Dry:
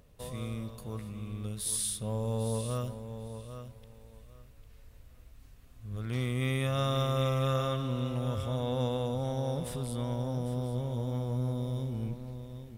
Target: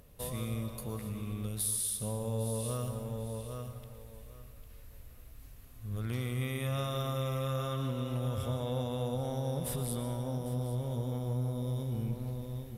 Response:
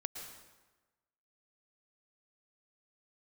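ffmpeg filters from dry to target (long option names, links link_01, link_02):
-filter_complex "[0:a]equalizer=frequency=12000:width_type=o:width=0.45:gain=12.5,acompressor=threshold=-33dB:ratio=6,asplit=2[link_01][link_02];[1:a]atrim=start_sample=2205[link_03];[link_02][link_03]afir=irnorm=-1:irlink=0,volume=4dB[link_04];[link_01][link_04]amix=inputs=2:normalize=0,volume=-5dB"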